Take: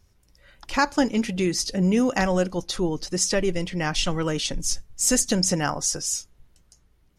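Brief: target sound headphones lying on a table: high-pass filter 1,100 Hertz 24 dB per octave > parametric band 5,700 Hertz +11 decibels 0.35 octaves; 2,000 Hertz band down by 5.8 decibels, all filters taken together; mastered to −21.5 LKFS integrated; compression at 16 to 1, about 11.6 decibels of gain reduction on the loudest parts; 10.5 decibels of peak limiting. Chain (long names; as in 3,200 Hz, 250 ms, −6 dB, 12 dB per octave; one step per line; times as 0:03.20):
parametric band 2,000 Hz −7.5 dB
downward compressor 16 to 1, threshold −28 dBFS
brickwall limiter −28 dBFS
high-pass filter 1,100 Hz 24 dB per octave
parametric band 5,700 Hz +11 dB 0.35 octaves
level +13 dB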